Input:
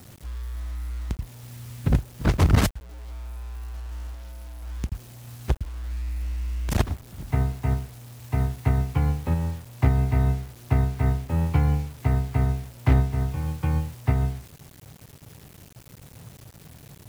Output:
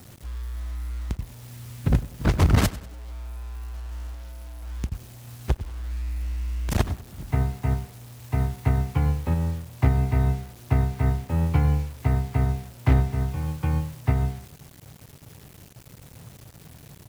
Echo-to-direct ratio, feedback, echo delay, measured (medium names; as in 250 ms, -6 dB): -16.5 dB, 41%, 97 ms